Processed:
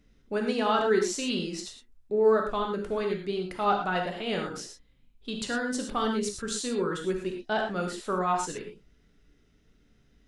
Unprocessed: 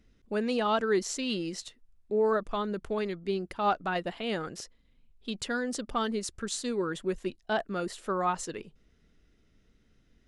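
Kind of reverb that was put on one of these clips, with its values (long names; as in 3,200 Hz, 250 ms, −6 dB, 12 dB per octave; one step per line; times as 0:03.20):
reverb whose tail is shaped and stops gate 140 ms flat, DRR 1.5 dB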